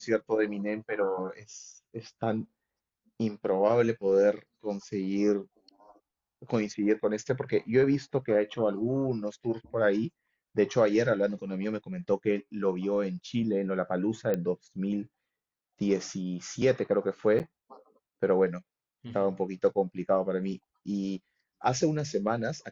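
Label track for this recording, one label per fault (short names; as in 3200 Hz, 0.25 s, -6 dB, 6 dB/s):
14.340000	14.340000	pop -17 dBFS
17.390000	17.400000	gap 8.7 ms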